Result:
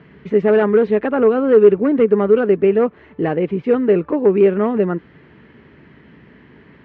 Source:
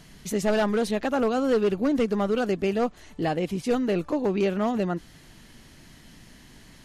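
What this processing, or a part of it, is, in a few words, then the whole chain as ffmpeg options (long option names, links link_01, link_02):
bass cabinet: -af "highpass=frequency=71:width=0.5412,highpass=frequency=71:width=1.3066,equalizer=frequency=97:width_type=q:width=4:gain=-7,equalizer=frequency=420:width_type=q:width=4:gain=9,equalizer=frequency=720:width_type=q:width=4:gain=-6,lowpass=frequency=2300:width=0.5412,lowpass=frequency=2300:width=1.3066,volume=6.5dB"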